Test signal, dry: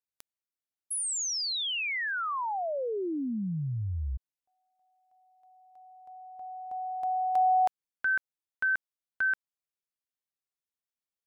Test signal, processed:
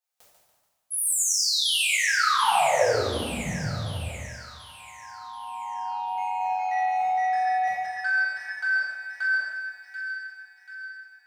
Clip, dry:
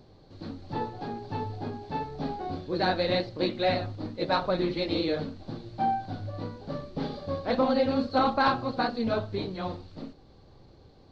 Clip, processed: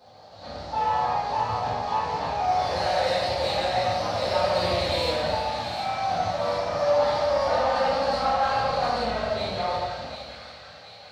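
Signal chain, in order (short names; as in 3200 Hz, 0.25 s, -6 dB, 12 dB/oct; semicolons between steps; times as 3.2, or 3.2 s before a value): octaver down 2 oct, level +3 dB; HPF 79 Hz 24 dB/oct; resonant low shelf 480 Hz -8.5 dB, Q 3; harmonic-percussive split percussive -4 dB; tone controls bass -3 dB, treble +2 dB; limiter -22.5 dBFS; compressor, threshold -29 dBFS; transient shaper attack -1 dB, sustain +7 dB; soft clip -30 dBFS; echoes that change speed 0.164 s, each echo +2 st, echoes 3, each echo -6 dB; on a send: split-band echo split 1500 Hz, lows 84 ms, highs 0.736 s, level -7.5 dB; on the sum: two-slope reverb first 0.94 s, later 2.8 s, DRR -10 dB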